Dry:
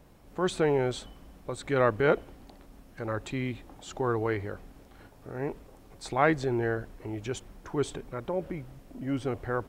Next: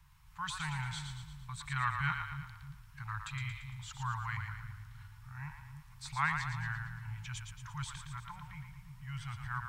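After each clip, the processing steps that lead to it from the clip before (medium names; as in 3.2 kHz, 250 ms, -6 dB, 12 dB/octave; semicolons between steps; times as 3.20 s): Chebyshev band-stop 150–950 Hz, order 4; two-band feedback delay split 360 Hz, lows 312 ms, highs 114 ms, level -6 dB; trim -3.5 dB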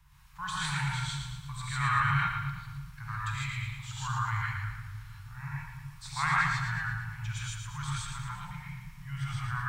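gated-style reverb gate 180 ms rising, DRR -5.5 dB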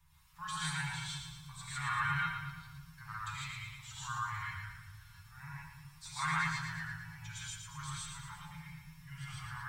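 treble shelf 5.5 kHz +5.5 dB; inharmonic resonator 79 Hz, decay 0.25 s, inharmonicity 0.002; trim +1.5 dB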